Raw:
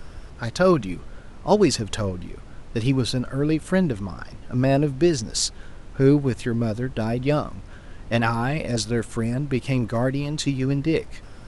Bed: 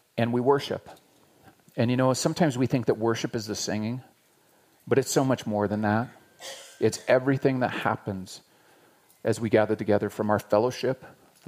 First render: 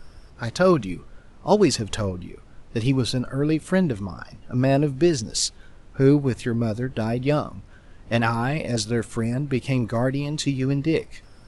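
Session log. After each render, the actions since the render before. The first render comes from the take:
noise reduction from a noise print 7 dB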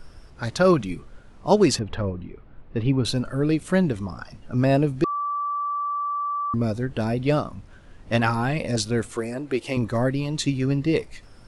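0:01.79–0:03.05: high-frequency loss of the air 390 metres
0:05.04–0:06.54: beep over 1,160 Hz −23.5 dBFS
0:09.12–0:09.77: low shelf with overshoot 250 Hz −10.5 dB, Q 1.5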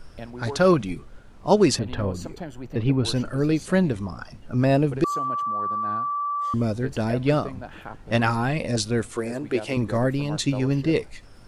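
mix in bed −13 dB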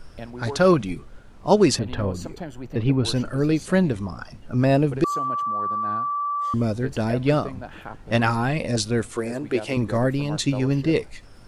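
level +1 dB

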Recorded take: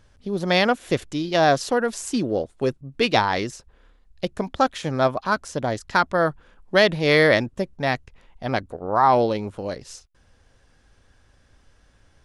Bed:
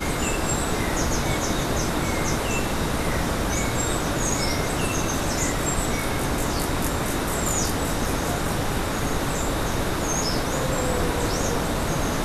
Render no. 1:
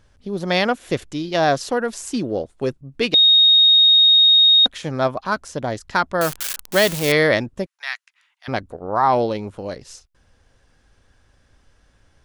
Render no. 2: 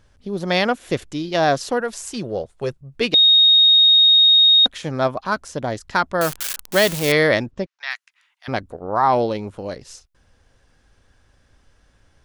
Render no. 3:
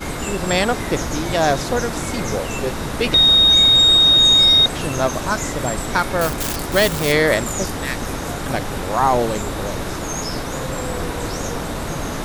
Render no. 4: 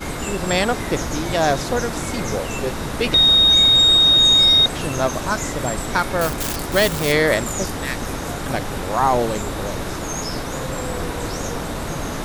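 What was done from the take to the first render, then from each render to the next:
0:03.14–0:04.66: beep over 3,730 Hz −9 dBFS; 0:06.21–0:07.12: spike at every zero crossing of −12.5 dBFS; 0:07.66–0:08.48: high-pass filter 1,300 Hz 24 dB per octave
0:01.80–0:03.01: parametric band 280 Hz −12.5 dB 0.45 octaves; 0:07.51–0:07.91: low-pass filter 6,000 Hz 24 dB per octave
mix in bed −1 dB
level −1 dB

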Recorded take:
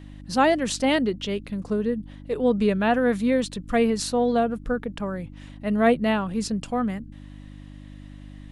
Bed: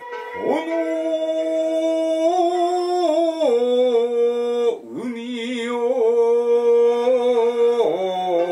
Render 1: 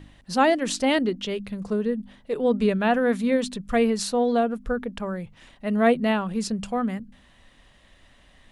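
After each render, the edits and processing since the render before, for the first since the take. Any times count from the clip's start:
hum removal 50 Hz, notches 6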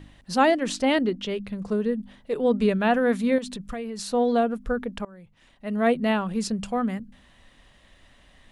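0:00.51–0:01.68: high-shelf EQ 5,200 Hz −6 dB
0:03.38–0:04.13: downward compressor, threshold −30 dBFS
0:05.05–0:06.17: fade in, from −21.5 dB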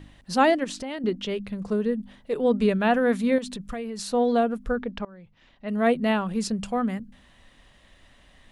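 0:00.64–0:01.04: downward compressor 5 to 1, threshold −31 dBFS
0:04.75–0:05.69: low-pass filter 5,600 Hz 24 dB per octave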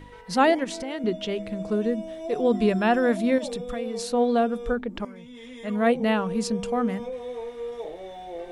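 mix in bed −17 dB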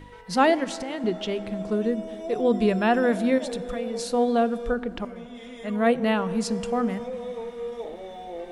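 dense smooth reverb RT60 4.9 s, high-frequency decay 0.5×, DRR 16 dB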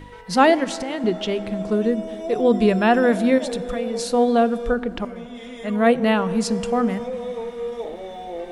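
level +4.5 dB

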